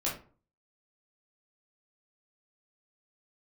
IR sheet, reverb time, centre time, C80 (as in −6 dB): 0.40 s, 30 ms, 12.5 dB